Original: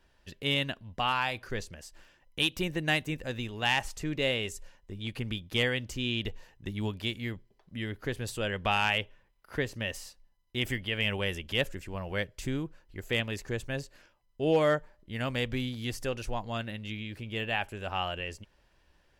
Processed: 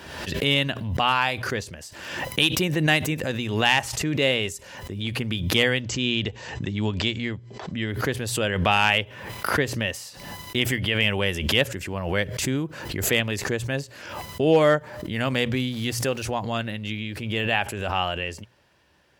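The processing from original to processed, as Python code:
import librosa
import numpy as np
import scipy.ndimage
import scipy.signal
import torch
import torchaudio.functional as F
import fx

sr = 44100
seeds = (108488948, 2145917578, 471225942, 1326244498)

y = fx.brickwall_lowpass(x, sr, high_hz=8100.0, at=(5.8, 7.88), fade=0.02)
y = fx.sample_gate(y, sr, floor_db=-52.0, at=(15.71, 16.23))
y = scipy.signal.sosfilt(scipy.signal.butter(4, 76.0, 'highpass', fs=sr, output='sos'), y)
y = fx.hum_notches(y, sr, base_hz=60, count=2)
y = fx.pre_swell(y, sr, db_per_s=50.0)
y = y * 10.0 ** (7.0 / 20.0)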